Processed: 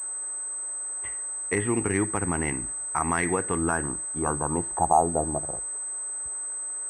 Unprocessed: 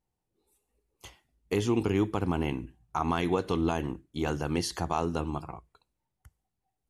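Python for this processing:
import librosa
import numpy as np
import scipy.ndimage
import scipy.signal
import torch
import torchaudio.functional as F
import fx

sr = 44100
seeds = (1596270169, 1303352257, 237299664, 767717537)

y = fx.filter_sweep_lowpass(x, sr, from_hz=1900.0, to_hz=440.0, start_s=3.39, end_s=5.94, q=5.7)
y = fx.dmg_noise_band(y, sr, seeds[0], low_hz=330.0, high_hz=1600.0, level_db=-54.0)
y = fx.pwm(y, sr, carrier_hz=8200.0)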